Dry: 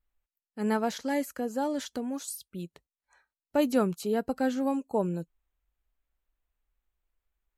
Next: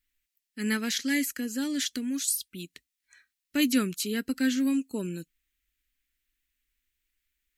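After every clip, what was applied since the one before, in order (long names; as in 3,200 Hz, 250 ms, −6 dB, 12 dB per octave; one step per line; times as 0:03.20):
drawn EQ curve 170 Hz 0 dB, 270 Hz +9 dB, 780 Hz −16 dB, 1,900 Hz +15 dB
level −4.5 dB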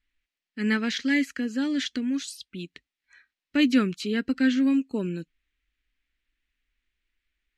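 low-pass filter 3,400 Hz 12 dB per octave
level +4 dB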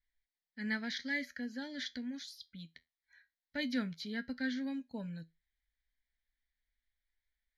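phaser with its sweep stopped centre 1,800 Hz, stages 8
tuned comb filter 82 Hz, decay 0.21 s, harmonics all, mix 50%
level −4 dB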